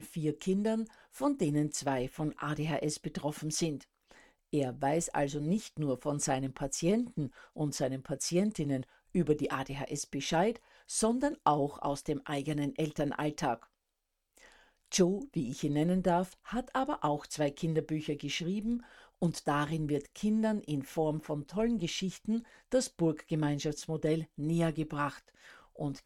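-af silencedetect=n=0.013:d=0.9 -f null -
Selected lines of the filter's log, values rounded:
silence_start: 13.55
silence_end: 14.92 | silence_duration: 1.37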